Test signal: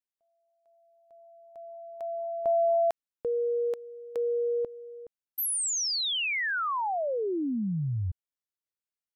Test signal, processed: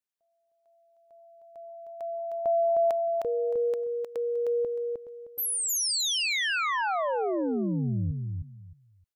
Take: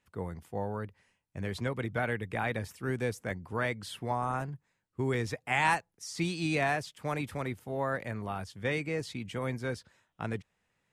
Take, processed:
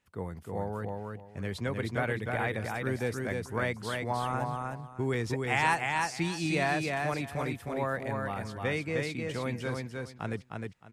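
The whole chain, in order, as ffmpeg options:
-af "aecho=1:1:309|618|927:0.668|0.14|0.0295"

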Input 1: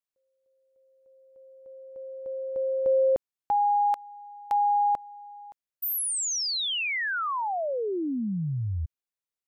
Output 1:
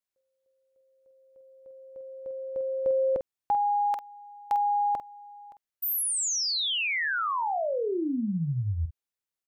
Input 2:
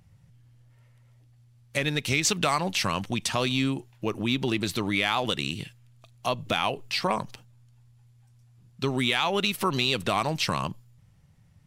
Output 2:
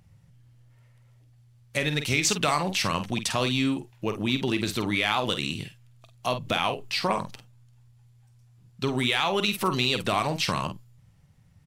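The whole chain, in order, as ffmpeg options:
-filter_complex "[0:a]asplit=2[a][b];[b]adelay=48,volume=-9dB[c];[a][c]amix=inputs=2:normalize=0"

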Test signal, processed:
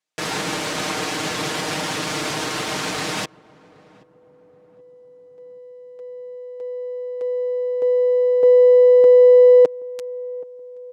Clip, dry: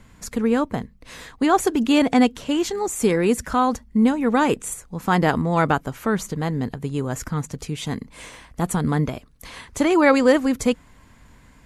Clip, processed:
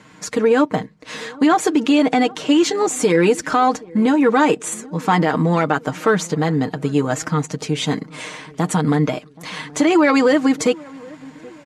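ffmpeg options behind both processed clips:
-filter_complex "[0:a]aeval=exprs='if(lt(val(0),0),0.708*val(0),val(0))':c=same,aecho=1:1:6.5:0.62,alimiter=limit=-14.5dB:level=0:latency=1:release=108,highpass=200,lowpass=7k,asplit=2[a][b];[b]adelay=776,lowpass=f=870:p=1,volume=-21.5dB,asplit=2[c][d];[d]adelay=776,lowpass=f=870:p=1,volume=0.52,asplit=2[e][f];[f]adelay=776,lowpass=f=870:p=1,volume=0.52,asplit=2[g][h];[h]adelay=776,lowpass=f=870:p=1,volume=0.52[i];[c][e][g][i]amix=inputs=4:normalize=0[j];[a][j]amix=inputs=2:normalize=0,volume=9dB"

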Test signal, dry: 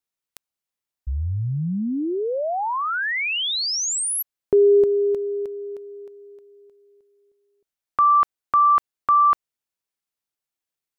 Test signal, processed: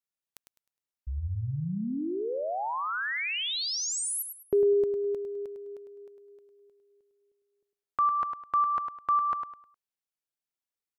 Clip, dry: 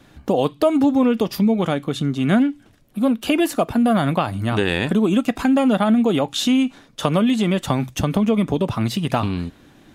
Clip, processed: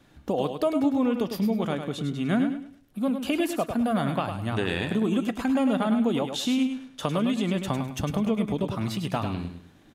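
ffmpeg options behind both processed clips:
-af "aecho=1:1:103|206|309|412:0.422|0.122|0.0355|0.0103,volume=-8dB"

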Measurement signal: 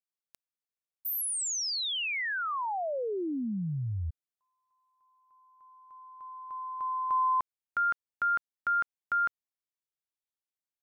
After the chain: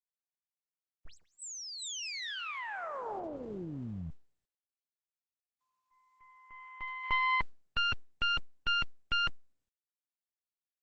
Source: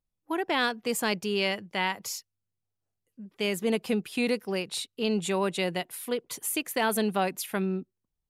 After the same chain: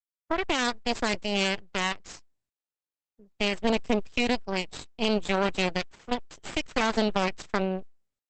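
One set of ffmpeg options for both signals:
-af "agate=range=-34dB:threshold=-49dB:ratio=3:release=96:detection=peak,aeval=exprs='0.237*(cos(1*acos(clip(val(0)/0.237,-1,1)))-cos(1*PI/2))+0.0075*(cos(5*acos(clip(val(0)/0.237,-1,1)))-cos(5*PI/2))+0.0596*(cos(6*acos(clip(val(0)/0.237,-1,1)))-cos(6*PI/2))+0.0335*(cos(7*acos(clip(val(0)/0.237,-1,1)))-cos(7*PI/2))':c=same" -ar 48000 -c:a libopus -b:a 10k

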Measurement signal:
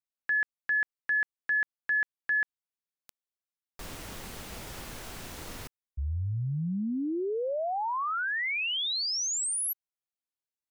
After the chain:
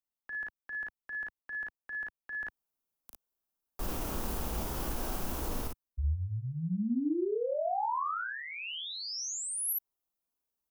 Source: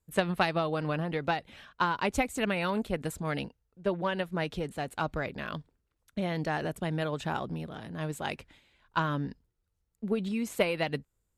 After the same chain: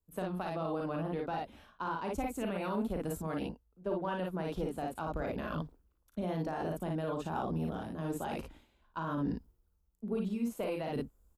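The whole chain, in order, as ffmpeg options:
-filter_complex "[0:a]areverse,acompressor=threshold=-38dB:ratio=6:attack=82:release=781:knee=1:detection=rms,areverse,lowshelf=f=220:g=3,aecho=1:1:38|55:0.473|0.668,acrossover=split=130|4900[a][b][c];[b]acompressor=threshold=-36dB:ratio=6:attack=66:release=35:knee=2.83:detection=peak[d];[a][d][c]amix=inputs=3:normalize=0,alimiter=level_in=5.5dB:limit=-24dB:level=0:latency=1:release=16,volume=-5.5dB,equalizer=f=125:t=o:w=1:g=-10,equalizer=f=500:t=o:w=1:g=-3,equalizer=f=2k:t=o:w=1:g=-12,equalizer=f=4k:t=o:w=1:g=-8,equalizer=f=8k:t=o:w=1:g=-7,volume=8dB"

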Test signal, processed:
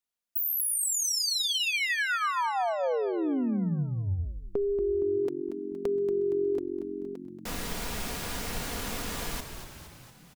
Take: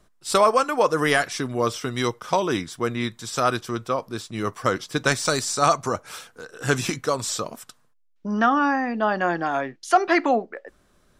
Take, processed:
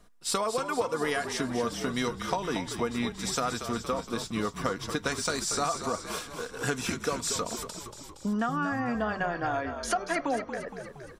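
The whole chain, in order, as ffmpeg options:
-filter_complex "[0:a]aecho=1:1:4.2:0.43,acompressor=threshold=-27dB:ratio=6,asplit=9[a][b][c][d][e][f][g][h][i];[b]adelay=233,afreqshift=-46,volume=-9dB[j];[c]adelay=466,afreqshift=-92,volume=-13.3dB[k];[d]adelay=699,afreqshift=-138,volume=-17.6dB[l];[e]adelay=932,afreqshift=-184,volume=-21.9dB[m];[f]adelay=1165,afreqshift=-230,volume=-26.2dB[n];[g]adelay=1398,afreqshift=-276,volume=-30.5dB[o];[h]adelay=1631,afreqshift=-322,volume=-34.8dB[p];[i]adelay=1864,afreqshift=-368,volume=-39.1dB[q];[a][j][k][l][m][n][o][p][q]amix=inputs=9:normalize=0"

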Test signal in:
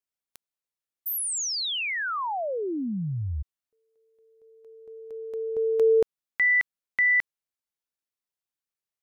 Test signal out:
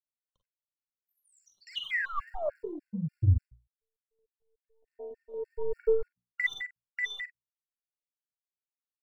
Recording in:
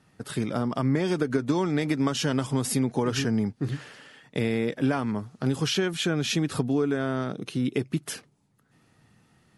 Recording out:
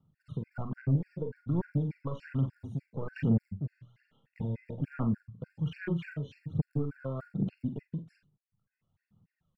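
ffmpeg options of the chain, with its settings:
-filter_complex "[0:a]lowpass=3k,acrossover=split=640|970[a][b][c];[b]aeval=exprs='max(val(0),0)':c=same[d];[a][d][c]amix=inputs=3:normalize=0,afwtdn=0.0224,lowshelf=f=230:t=q:w=1.5:g=7.5,acompressor=threshold=-23dB:ratio=6:attack=17:release=916:knee=1:detection=rms,bandreject=f=60:t=h:w=6,bandreject=f=120:t=h:w=6,bandreject=f=180:t=h:w=6,bandreject=f=240:t=h:w=6,aphaser=in_gain=1:out_gain=1:delay=2:decay=0.66:speed=1.2:type=sinusoidal,asoftclip=type=tanh:threshold=-12.5dB,asplit=2[e][f];[f]adelay=43,volume=-12dB[g];[e][g]amix=inputs=2:normalize=0,aecho=1:1:41|52:0.282|0.335,afftfilt=real='re*gt(sin(2*PI*3.4*pts/sr)*(1-2*mod(floor(b*sr/1024/1400),2)),0)':imag='im*gt(sin(2*PI*3.4*pts/sr)*(1-2*mod(floor(b*sr/1024/1400),2)),0)':win_size=1024:overlap=0.75,volume=-4.5dB"

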